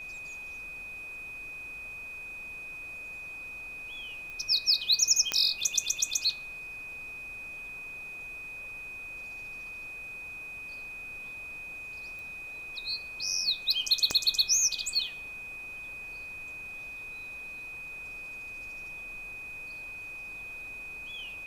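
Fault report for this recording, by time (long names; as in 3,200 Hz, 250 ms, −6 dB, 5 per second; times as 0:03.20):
whistle 2,500 Hz −39 dBFS
0:04.30: click −30 dBFS
0:05.32: click −11 dBFS
0:12.19: click
0:14.11: click −14 dBFS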